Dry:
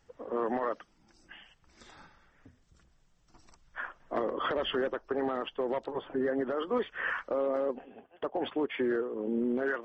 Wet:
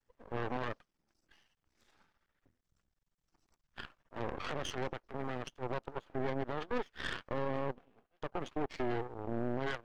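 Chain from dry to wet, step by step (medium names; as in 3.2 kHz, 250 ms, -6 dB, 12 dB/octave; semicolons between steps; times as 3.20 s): 3.86–5.63 s: transient shaper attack -9 dB, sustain +4 dB; Chebyshev shaper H 7 -20 dB, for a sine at -20.5 dBFS; half-wave rectifier; trim -2 dB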